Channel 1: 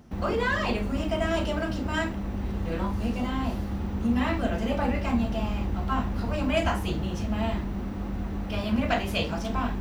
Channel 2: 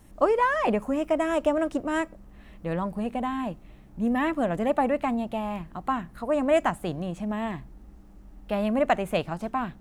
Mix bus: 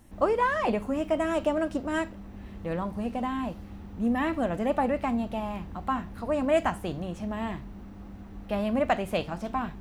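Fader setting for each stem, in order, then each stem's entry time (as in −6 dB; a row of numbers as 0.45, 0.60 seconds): −12.5, −2.5 decibels; 0.00, 0.00 seconds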